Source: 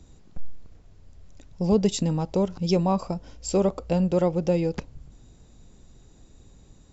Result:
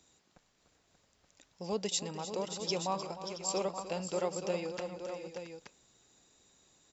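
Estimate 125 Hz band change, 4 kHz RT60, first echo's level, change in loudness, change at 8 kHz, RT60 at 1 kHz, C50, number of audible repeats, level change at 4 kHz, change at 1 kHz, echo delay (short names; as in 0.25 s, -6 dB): -19.0 dB, none, -13.0 dB, -12.0 dB, n/a, none, none, 4, -1.0 dB, -6.5 dB, 0.305 s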